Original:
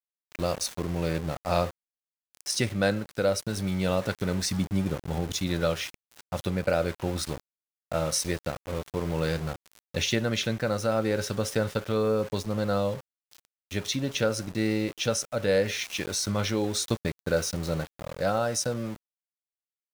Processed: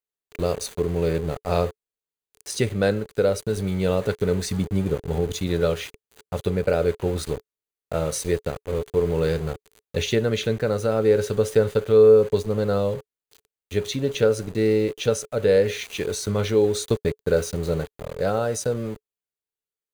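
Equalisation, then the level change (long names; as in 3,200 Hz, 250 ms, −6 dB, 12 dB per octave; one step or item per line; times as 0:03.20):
low-shelf EQ 120 Hz +8 dB
parametric band 430 Hz +14.5 dB 0.3 octaves
notch filter 5,400 Hz, Q 6.2
0.0 dB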